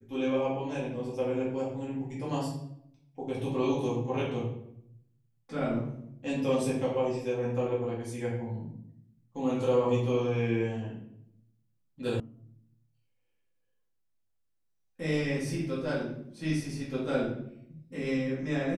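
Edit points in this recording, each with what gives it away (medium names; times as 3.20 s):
12.20 s: sound stops dead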